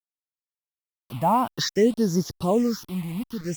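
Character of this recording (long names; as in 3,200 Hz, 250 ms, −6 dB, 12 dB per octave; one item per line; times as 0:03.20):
tremolo triangle 1.4 Hz, depth 50%
a quantiser's noise floor 8 bits, dither none
phaser sweep stages 6, 0.57 Hz, lowest notch 400–2,600 Hz
Opus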